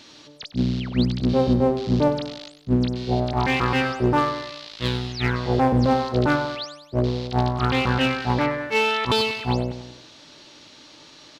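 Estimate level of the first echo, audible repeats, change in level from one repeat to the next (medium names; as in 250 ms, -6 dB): -12.5 dB, 4, -5.5 dB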